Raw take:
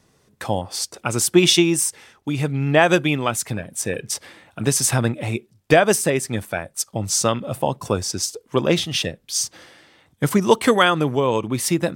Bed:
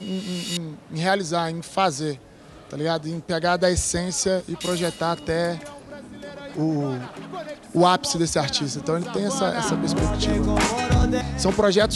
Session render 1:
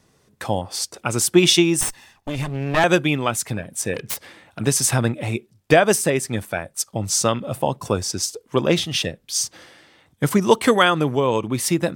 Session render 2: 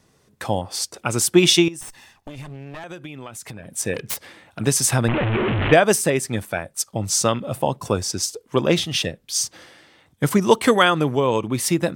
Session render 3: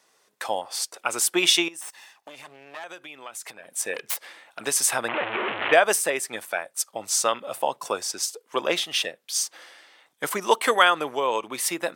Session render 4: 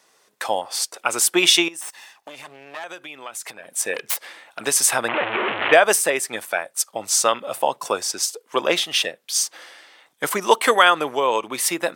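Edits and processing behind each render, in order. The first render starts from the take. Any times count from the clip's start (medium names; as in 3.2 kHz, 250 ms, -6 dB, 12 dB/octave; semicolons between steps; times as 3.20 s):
1.81–2.84 s: comb filter that takes the minimum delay 1.1 ms; 3.94–4.59 s: self-modulated delay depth 0.19 ms
1.68–3.74 s: compression 16:1, threshold -31 dBFS; 5.08–5.73 s: one-bit delta coder 16 kbps, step -14.5 dBFS
dynamic bell 5.5 kHz, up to -4 dB, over -37 dBFS, Q 1.1; high-pass 630 Hz 12 dB/octave
trim +4.5 dB; peak limiter -1 dBFS, peak gain reduction 2.5 dB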